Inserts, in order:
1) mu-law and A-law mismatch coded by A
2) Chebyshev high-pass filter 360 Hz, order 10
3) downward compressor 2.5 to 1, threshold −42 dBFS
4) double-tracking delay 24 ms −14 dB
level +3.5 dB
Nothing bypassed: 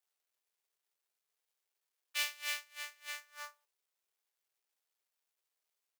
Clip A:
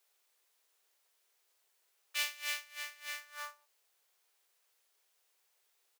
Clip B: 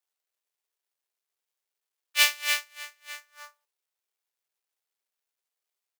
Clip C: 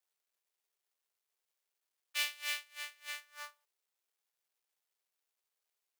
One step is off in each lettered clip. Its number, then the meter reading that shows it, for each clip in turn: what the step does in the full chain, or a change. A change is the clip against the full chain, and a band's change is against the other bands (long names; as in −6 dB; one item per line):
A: 1, distortion level −21 dB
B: 3, average gain reduction 7.0 dB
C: 4, 4 kHz band +2.0 dB